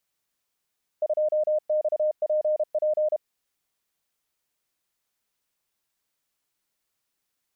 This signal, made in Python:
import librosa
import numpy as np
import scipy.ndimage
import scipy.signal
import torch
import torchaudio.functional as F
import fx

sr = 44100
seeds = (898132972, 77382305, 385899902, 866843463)

y = fx.morse(sr, text='2XPP', wpm=32, hz=612.0, level_db=-20.0)